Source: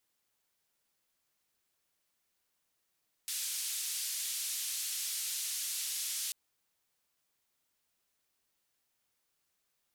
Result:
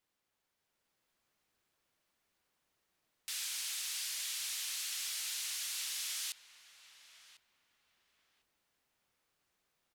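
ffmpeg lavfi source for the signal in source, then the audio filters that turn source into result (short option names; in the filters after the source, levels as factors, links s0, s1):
-f lavfi -i "anoisesrc=c=white:d=3.04:r=44100:seed=1,highpass=f=3400,lowpass=f=12000,volume=-28dB"
-filter_complex "[0:a]highshelf=f=4800:g=-10,asplit=2[s0][s1];[s1]adelay=1049,lowpass=f=1600:p=1,volume=0.282,asplit=2[s2][s3];[s3]adelay=1049,lowpass=f=1600:p=1,volume=0.3,asplit=2[s4][s5];[s5]adelay=1049,lowpass=f=1600:p=1,volume=0.3[s6];[s0][s2][s4][s6]amix=inputs=4:normalize=0,dynaudnorm=f=120:g=13:m=1.58"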